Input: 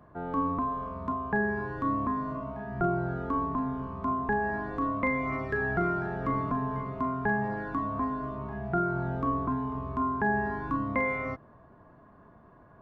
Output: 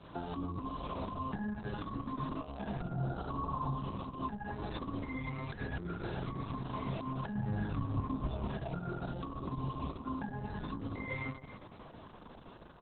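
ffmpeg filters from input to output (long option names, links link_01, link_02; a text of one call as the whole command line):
ffmpeg -i in.wav -filter_complex "[0:a]flanger=delay=17.5:depth=4.5:speed=1.2,acrossover=split=190[link_01][link_02];[link_02]acompressor=threshold=-41dB:ratio=16[link_03];[link_01][link_03]amix=inputs=2:normalize=0,aexciter=amount=10.8:drive=7.3:freq=2800,alimiter=level_in=12dB:limit=-24dB:level=0:latency=1:release=228,volume=-12dB,asplit=3[link_04][link_05][link_06];[link_04]afade=type=out:start_time=2.92:duration=0.02[link_07];[link_05]equalizer=frequency=125:width_type=o:width=1:gain=5,equalizer=frequency=250:width_type=o:width=1:gain=-6,equalizer=frequency=500:width_type=o:width=1:gain=3,equalizer=frequency=1000:width_type=o:width=1:gain=9,equalizer=frequency=2000:width_type=o:width=1:gain=-8,afade=type=in:start_time=2.92:duration=0.02,afade=type=out:start_time=3.78:duration=0.02[link_08];[link_06]afade=type=in:start_time=3.78:duration=0.02[link_09];[link_07][link_08][link_09]amix=inputs=3:normalize=0,aresample=11025,aresample=44100,asplit=3[link_10][link_11][link_12];[link_10]afade=type=out:start_time=7.36:duration=0.02[link_13];[link_11]bass=frequency=250:gain=8,treble=frequency=4000:gain=-11,afade=type=in:start_time=7.36:duration=0.02,afade=type=out:start_time=8.46:duration=0.02[link_14];[link_12]afade=type=in:start_time=8.46:duration=0.02[link_15];[link_13][link_14][link_15]amix=inputs=3:normalize=0,asplit=2[link_16][link_17];[link_17]adelay=272,lowpass=frequency=1600:poles=1,volume=-12dB,asplit=2[link_18][link_19];[link_19]adelay=272,lowpass=frequency=1600:poles=1,volume=0.37,asplit=2[link_20][link_21];[link_21]adelay=272,lowpass=frequency=1600:poles=1,volume=0.37,asplit=2[link_22][link_23];[link_23]adelay=272,lowpass=frequency=1600:poles=1,volume=0.37[link_24];[link_16][link_18][link_20][link_22][link_24]amix=inputs=5:normalize=0,volume=7dB" -ar 48000 -c:a libopus -b:a 6k out.opus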